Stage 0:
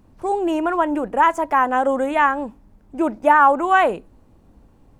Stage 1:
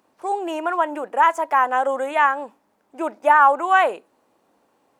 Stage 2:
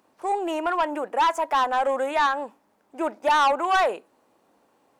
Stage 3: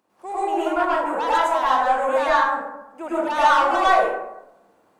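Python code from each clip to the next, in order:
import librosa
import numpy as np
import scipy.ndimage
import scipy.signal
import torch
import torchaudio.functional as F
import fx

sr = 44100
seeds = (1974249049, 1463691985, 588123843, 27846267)

y1 = scipy.signal.sosfilt(scipy.signal.butter(2, 520.0, 'highpass', fs=sr, output='sos'), x)
y2 = 10.0 ** (-15.5 / 20.0) * np.tanh(y1 / 10.0 ** (-15.5 / 20.0))
y3 = fx.rev_plate(y2, sr, seeds[0], rt60_s=0.91, hf_ratio=0.45, predelay_ms=90, drr_db=-10.0)
y3 = y3 * 10.0 ** (-7.0 / 20.0)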